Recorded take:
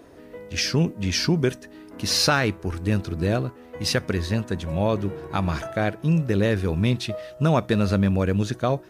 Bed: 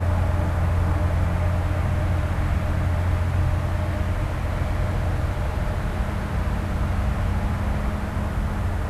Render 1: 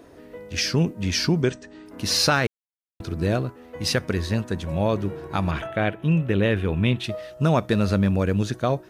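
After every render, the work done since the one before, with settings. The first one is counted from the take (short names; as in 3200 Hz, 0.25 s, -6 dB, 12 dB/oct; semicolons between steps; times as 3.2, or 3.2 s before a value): 1.42–1.86 brick-wall FIR low-pass 8800 Hz; 2.47–3 mute; 5.51–7.04 resonant high shelf 3900 Hz -7.5 dB, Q 3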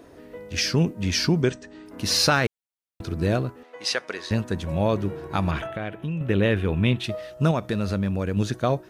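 3.63–4.31 BPF 570–7300 Hz; 5.66–6.21 compressor, threshold -26 dBFS; 7.51–8.37 compressor 1.5:1, threshold -29 dBFS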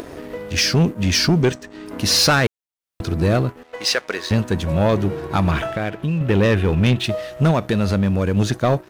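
upward compressor, threshold -33 dBFS; sample leveller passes 2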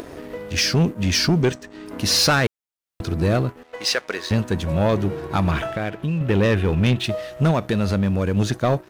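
gain -2 dB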